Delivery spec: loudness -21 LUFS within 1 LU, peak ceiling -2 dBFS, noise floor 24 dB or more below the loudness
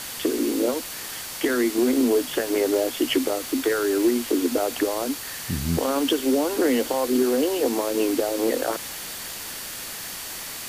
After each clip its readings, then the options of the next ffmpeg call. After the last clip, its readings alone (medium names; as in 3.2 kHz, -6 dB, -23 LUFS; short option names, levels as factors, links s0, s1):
steady tone 4.5 kHz; tone level -46 dBFS; noise floor -35 dBFS; noise floor target -48 dBFS; loudness -24.0 LUFS; peak level -11.0 dBFS; loudness target -21.0 LUFS
-> -af "bandreject=f=4500:w=30"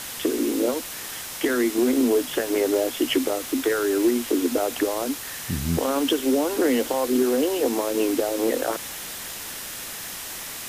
steady tone not found; noise floor -35 dBFS; noise floor target -48 dBFS
-> -af "afftdn=nr=13:nf=-35"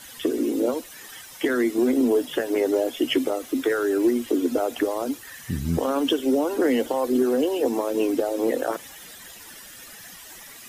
noise floor -44 dBFS; noise floor target -48 dBFS
-> -af "afftdn=nr=6:nf=-44"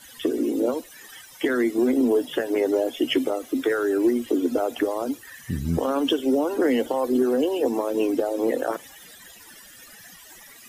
noise floor -47 dBFS; noise floor target -48 dBFS
-> -af "afftdn=nr=6:nf=-47"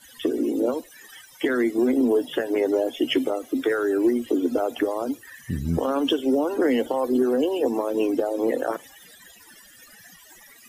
noise floor -50 dBFS; loudness -24.0 LUFS; peak level -12.5 dBFS; loudness target -21.0 LUFS
-> -af "volume=1.41"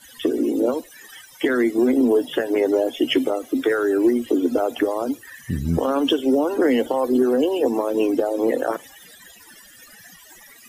loudness -21.0 LUFS; peak level -9.5 dBFS; noise floor -47 dBFS